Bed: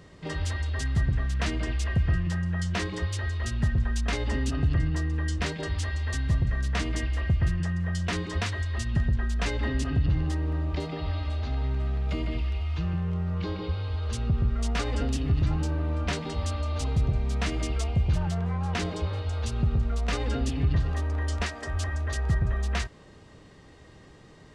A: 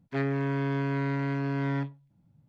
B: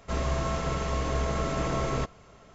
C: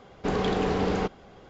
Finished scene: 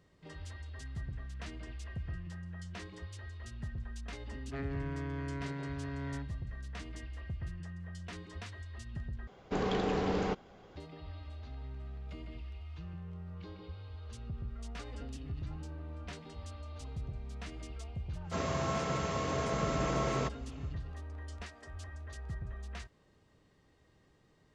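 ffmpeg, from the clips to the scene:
ffmpeg -i bed.wav -i cue0.wav -i cue1.wav -i cue2.wav -filter_complex "[0:a]volume=-16dB[link_01];[2:a]highpass=frequency=100:width=0.5412,highpass=frequency=100:width=1.3066[link_02];[link_01]asplit=2[link_03][link_04];[link_03]atrim=end=9.274[link_05];[3:a]atrim=end=1.49,asetpts=PTS-STARTPTS,volume=-6dB[link_06];[link_04]atrim=start=10.756[link_07];[1:a]atrim=end=2.48,asetpts=PTS-STARTPTS,volume=-11dB,afade=type=in:duration=0.004:curve=hsin,afade=type=out:start_time=2.476:duration=0.004:curve=hsin,adelay=4390[link_08];[link_02]atrim=end=2.54,asetpts=PTS-STARTPTS,volume=-3dB,afade=type=in:duration=0.1,afade=type=out:start_time=2.44:duration=0.1,adelay=18230[link_09];[link_05][link_06]acrossfade=duration=0.004:curve1=hsin:curve2=hsin[link_10];[link_10][link_07]acrossfade=duration=0.004:curve1=hsin:curve2=hsin[link_11];[link_11][link_08][link_09]amix=inputs=3:normalize=0" out.wav

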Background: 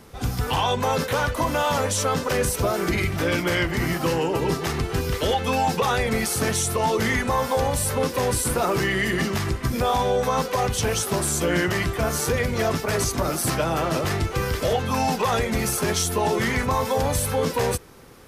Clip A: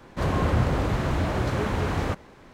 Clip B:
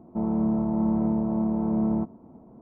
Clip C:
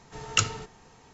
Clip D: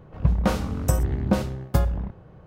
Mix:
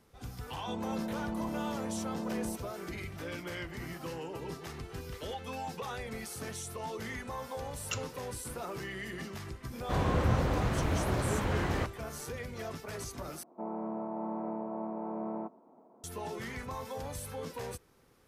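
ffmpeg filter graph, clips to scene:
ffmpeg -i bed.wav -i cue0.wav -i cue1.wav -i cue2.wav -filter_complex "[2:a]asplit=2[link_01][link_02];[0:a]volume=-17.5dB[link_03];[link_01]equalizer=frequency=120:width=0.65:gain=-10[link_04];[3:a]asplit=2[link_05][link_06];[link_06]adelay=5,afreqshift=2[link_07];[link_05][link_07]amix=inputs=2:normalize=1[link_08];[link_02]highpass=500[link_09];[link_03]asplit=2[link_10][link_11];[link_10]atrim=end=13.434[link_12];[link_09]atrim=end=2.61,asetpts=PTS-STARTPTS,volume=-2dB[link_13];[link_11]atrim=start=16.036[link_14];[link_04]atrim=end=2.61,asetpts=PTS-STARTPTS,volume=-7.5dB,afade=type=in:duration=0.004:curve=hsin,afade=type=out:start_time=2.606:duration=0.004:curve=hsin,adelay=520[link_15];[link_08]atrim=end=1.13,asetpts=PTS-STARTPTS,volume=-11dB,afade=type=in:duration=0.004:curve=hsin,afade=type=out:start_time=1.126:duration=0.004:curve=hsin,adelay=332514S[link_16];[1:a]atrim=end=2.53,asetpts=PTS-STARTPTS,volume=-5.5dB,afade=type=in:duration=0.004:curve=hsin,afade=type=out:start_time=2.526:duration=0.004:curve=hsin,adelay=9720[link_17];[link_12][link_13]acrossfade=duration=0.004:curve1=hsin:curve2=hsin[link_18];[link_18][link_14]acrossfade=duration=0.004:curve1=hsin:curve2=hsin[link_19];[link_19][link_15][link_16][link_17]amix=inputs=4:normalize=0" out.wav

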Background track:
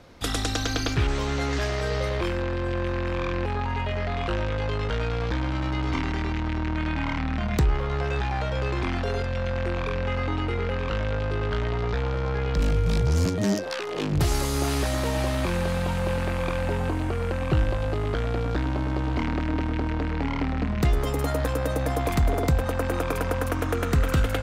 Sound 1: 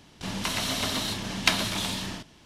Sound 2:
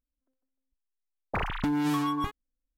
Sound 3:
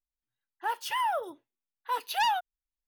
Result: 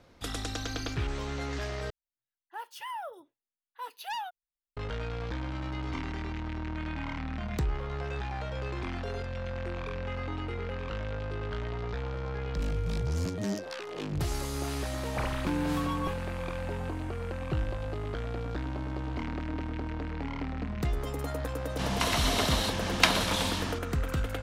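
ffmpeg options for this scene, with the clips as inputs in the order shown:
ffmpeg -i bed.wav -i cue0.wav -i cue1.wav -i cue2.wav -filter_complex "[0:a]volume=-8.5dB[link_01];[1:a]equalizer=frequency=880:width_type=o:width=2.4:gain=5[link_02];[link_01]asplit=2[link_03][link_04];[link_03]atrim=end=1.904[link_05];[3:a]atrim=end=2.87,asetpts=PTS-STARTPTS,volume=-9.5dB[link_06];[link_04]atrim=start=4.766[link_07];[2:a]atrim=end=2.77,asetpts=PTS-STARTPTS,volume=-4.5dB,afade=type=in:duration=0.004:curve=hsin,afade=type=out:start_time=2.766:duration=0.004:curve=hsin,adelay=13830[link_08];[link_02]atrim=end=2.45,asetpts=PTS-STARTPTS,volume=-2dB,afade=type=in:duration=0.004:curve=hsin,afade=type=out:start_time=2.446:duration=0.004:curve=hsin,adelay=21560[link_09];[link_05][link_06]acrossfade=duration=0.004:curve1=hsin:curve2=hsin[link_10];[link_10][link_07]acrossfade=duration=0.004:curve1=hsin:curve2=hsin[link_11];[link_11][link_08][link_09]amix=inputs=3:normalize=0" out.wav

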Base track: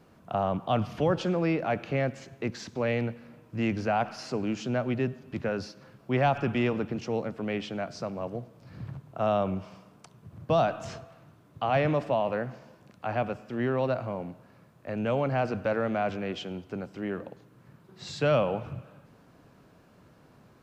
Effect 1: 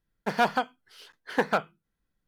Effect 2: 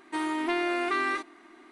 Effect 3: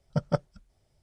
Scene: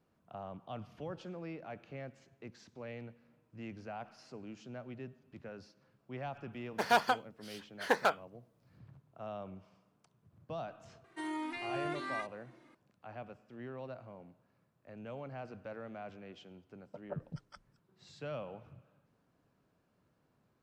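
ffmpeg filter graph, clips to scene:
ffmpeg -i bed.wav -i cue0.wav -i cue1.wav -i cue2.wav -filter_complex "[0:a]volume=-17.5dB[link_01];[1:a]bass=frequency=250:gain=-12,treble=frequency=4000:gain=5[link_02];[2:a]asplit=2[link_03][link_04];[link_04]adelay=2.1,afreqshift=-1.6[link_05];[link_03][link_05]amix=inputs=2:normalize=1[link_06];[3:a]acrossover=split=260|1200[link_07][link_08][link_09];[link_07]adelay=220[link_10];[link_09]adelay=420[link_11];[link_10][link_08][link_11]amix=inputs=3:normalize=0[link_12];[link_02]atrim=end=2.27,asetpts=PTS-STARTPTS,volume=-3.5dB,afade=type=in:duration=0.004:curve=hsin,afade=type=out:start_time=2.266:duration=0.004:curve=hsin,adelay=6520[link_13];[link_06]atrim=end=1.71,asetpts=PTS-STARTPTS,volume=-7.5dB,afade=type=in:duration=0.004:curve=hsin,afade=type=out:start_time=1.706:duration=0.004:curve=hsin,adelay=11040[link_14];[link_12]atrim=end=1.02,asetpts=PTS-STARTPTS,volume=-13.5dB,afade=type=in:duration=0.004:curve=hsin,afade=type=out:start_time=1.016:duration=0.004:curve=hsin,adelay=16780[link_15];[link_01][link_13][link_14][link_15]amix=inputs=4:normalize=0" out.wav

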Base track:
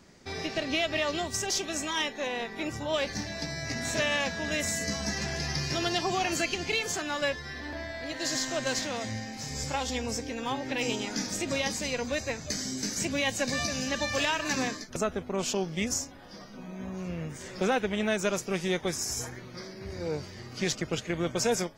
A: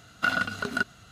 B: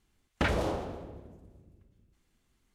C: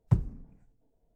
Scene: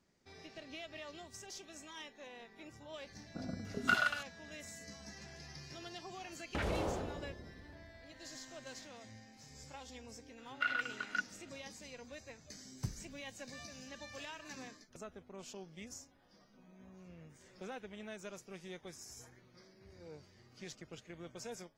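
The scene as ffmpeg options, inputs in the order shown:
ffmpeg -i bed.wav -i cue0.wav -i cue1.wav -i cue2.wav -filter_complex "[1:a]asplit=2[link_01][link_02];[0:a]volume=-19.5dB[link_03];[link_01]acrossover=split=580[link_04][link_05];[link_05]adelay=530[link_06];[link_04][link_06]amix=inputs=2:normalize=0[link_07];[2:a]alimiter=level_in=1.5dB:limit=-24dB:level=0:latency=1:release=78,volume=-1.5dB[link_08];[link_02]bandpass=frequency=2100:width_type=q:width=2.4:csg=0[link_09];[3:a]crystalizer=i=9.5:c=0[link_10];[link_07]atrim=end=1.11,asetpts=PTS-STARTPTS,volume=-5dB,afade=type=in:duration=0.004:curve=hsin,afade=type=out:start_time=1.106:duration=0.004:curve=hsin,adelay=3120[link_11];[link_08]atrim=end=2.74,asetpts=PTS-STARTPTS,volume=-1.5dB,afade=type=in:duration=0.004:curve=hsin,afade=type=out:start_time=2.736:duration=0.004:curve=hsin,adelay=6140[link_12];[link_09]atrim=end=1.11,asetpts=PTS-STARTPTS,volume=-3dB,afade=type=in:duration=0.004:curve=hsin,afade=type=out:start_time=1.106:duration=0.004:curve=hsin,adelay=10380[link_13];[link_10]atrim=end=1.15,asetpts=PTS-STARTPTS,volume=-16.5dB,afade=type=in:duration=0.004:curve=hsin,afade=type=out:start_time=1.146:duration=0.004:curve=hsin,adelay=12720[link_14];[link_03][link_11][link_12][link_13][link_14]amix=inputs=5:normalize=0" out.wav

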